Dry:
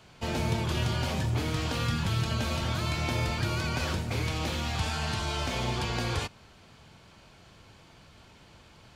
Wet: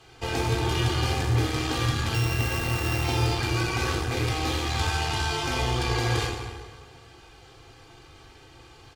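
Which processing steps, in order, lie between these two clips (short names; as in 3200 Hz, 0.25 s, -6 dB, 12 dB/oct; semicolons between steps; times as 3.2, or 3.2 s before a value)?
2.14–3.04 sample sorter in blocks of 16 samples; notches 50/100 Hz; comb 2.5 ms, depth 83%; plate-style reverb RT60 1.7 s, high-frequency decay 0.75×, DRR 0.5 dB; added harmonics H 8 -25 dB, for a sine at -13 dBFS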